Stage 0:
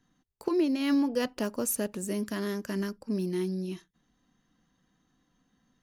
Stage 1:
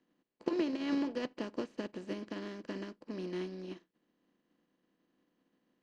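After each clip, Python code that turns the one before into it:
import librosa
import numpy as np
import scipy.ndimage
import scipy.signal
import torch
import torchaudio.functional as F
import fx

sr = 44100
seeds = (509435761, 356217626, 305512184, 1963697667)

y = fx.bin_compress(x, sr, power=0.4)
y = scipy.signal.sosfilt(scipy.signal.butter(4, 5000.0, 'lowpass', fs=sr, output='sos'), y)
y = fx.upward_expand(y, sr, threshold_db=-42.0, expansion=2.5)
y = y * 10.0 ** (-7.0 / 20.0)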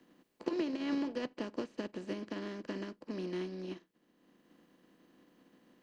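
y = fx.band_squash(x, sr, depth_pct=40)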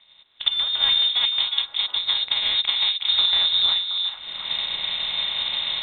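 y = fx.recorder_agc(x, sr, target_db=-21.0, rise_db_per_s=25.0, max_gain_db=30)
y = fx.freq_invert(y, sr, carrier_hz=3900)
y = fx.echo_stepped(y, sr, ms=361, hz=2900.0, octaves=-1.4, feedback_pct=70, wet_db=-4.0)
y = y * 10.0 ** (8.0 / 20.0)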